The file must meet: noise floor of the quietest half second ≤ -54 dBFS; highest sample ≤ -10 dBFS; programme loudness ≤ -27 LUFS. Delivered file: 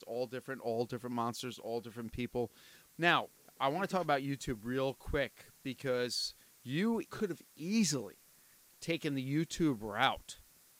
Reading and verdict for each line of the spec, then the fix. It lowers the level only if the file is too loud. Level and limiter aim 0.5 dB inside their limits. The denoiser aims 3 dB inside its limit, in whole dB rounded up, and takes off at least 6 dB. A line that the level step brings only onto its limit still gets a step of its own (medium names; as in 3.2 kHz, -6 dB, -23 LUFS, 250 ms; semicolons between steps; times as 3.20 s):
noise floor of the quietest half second -64 dBFS: pass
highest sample -15.0 dBFS: pass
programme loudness -36.0 LUFS: pass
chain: none needed